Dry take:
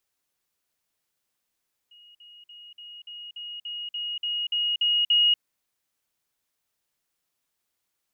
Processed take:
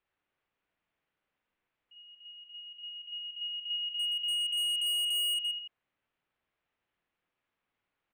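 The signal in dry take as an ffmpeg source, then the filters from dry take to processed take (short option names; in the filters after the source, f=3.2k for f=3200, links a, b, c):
-f lavfi -i "aevalsrc='pow(10,(-49.5+3*floor(t/0.29))/20)*sin(2*PI*2880*t)*clip(min(mod(t,0.29),0.24-mod(t,0.29))/0.005,0,1)':d=3.48:s=44100"
-filter_complex "[0:a]lowpass=f=2.8k:w=0.5412,lowpass=f=2.8k:w=1.3066,asplit=2[a][b];[b]aecho=0:1:50|107.5|173.6|249.7|337.1:0.631|0.398|0.251|0.158|0.1[c];[a][c]amix=inputs=2:normalize=0,volume=29.5dB,asoftclip=hard,volume=-29.5dB"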